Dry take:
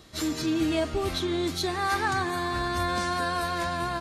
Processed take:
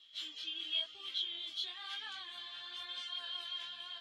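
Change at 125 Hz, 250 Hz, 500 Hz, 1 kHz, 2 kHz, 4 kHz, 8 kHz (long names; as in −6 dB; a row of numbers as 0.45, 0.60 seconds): below −40 dB, −37.5 dB, −33.0 dB, −26.5 dB, −18.0 dB, −2.0 dB, −22.0 dB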